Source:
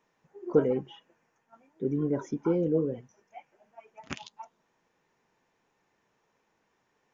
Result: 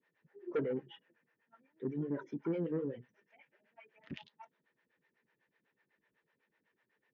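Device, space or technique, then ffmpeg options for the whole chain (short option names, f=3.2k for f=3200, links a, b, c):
guitar amplifier with harmonic tremolo: -filter_complex "[0:a]acrossover=split=420[a][b];[a]aeval=exprs='val(0)*(1-1/2+1/2*cos(2*PI*8*n/s))':c=same[c];[b]aeval=exprs='val(0)*(1-1/2-1/2*cos(2*PI*8*n/s))':c=same[d];[c][d]amix=inputs=2:normalize=0,asoftclip=type=tanh:threshold=-25.5dB,highpass=83,equalizer=f=90:t=q:w=4:g=-8,equalizer=f=750:t=q:w=4:g=-9,equalizer=f=1.1k:t=q:w=4:g=-6,equalizer=f=1.8k:t=q:w=4:g=8,lowpass=f=4k:w=0.5412,lowpass=f=4k:w=1.3066,asettb=1/sr,asplit=3[e][f][g];[e]atrim=end=2.534[h];[f]atrim=start=2.53:end=4.03,asetpts=PTS-STARTPTS,afade=t=in:d=0.004:c=qsin,afade=t=out:st=1.496:d=0.004:c=qsin,equalizer=f=3k:w=0.83:g=4.5[i];[g]atrim=start=4.026[j];[h][i]acrossfade=d=0.004:c1=hsin:c2=qsin[k];[k][j]acrossfade=d=0.004:c1=qsin:c2=hsin,volume=-1.5dB"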